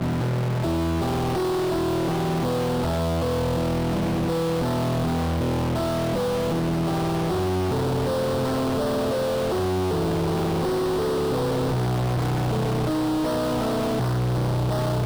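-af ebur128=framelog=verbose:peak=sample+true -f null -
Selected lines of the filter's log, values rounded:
Integrated loudness:
  I:         -24.2 LUFS
  Threshold: -34.2 LUFS
Loudness range:
  LRA:         0.3 LU
  Threshold: -44.2 LUFS
  LRA low:   -24.4 LUFS
  LRA high:  -24.0 LUFS
Sample peak:
  Peak:      -20.0 dBFS
True peak:
  Peak:      -20.0 dBFS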